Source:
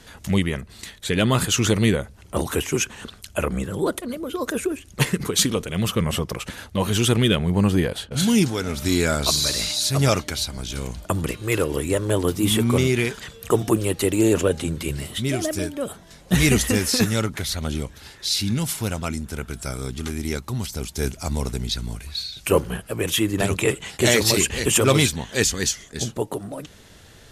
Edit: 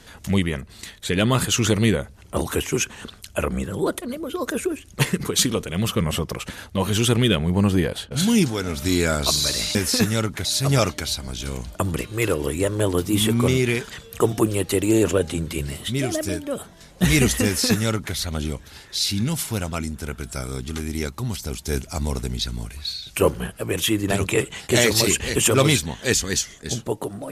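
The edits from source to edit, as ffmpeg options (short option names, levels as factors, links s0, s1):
-filter_complex "[0:a]asplit=3[s0][s1][s2];[s0]atrim=end=9.752[s3];[s1]atrim=start=16.748:end=17.452[s4];[s2]atrim=start=9.748[s5];[s3][s4]acrossfade=d=0.004:c1=hsin:c2=hsin[s6];[s6][s5]acrossfade=d=0.004:c1=hsin:c2=hsin"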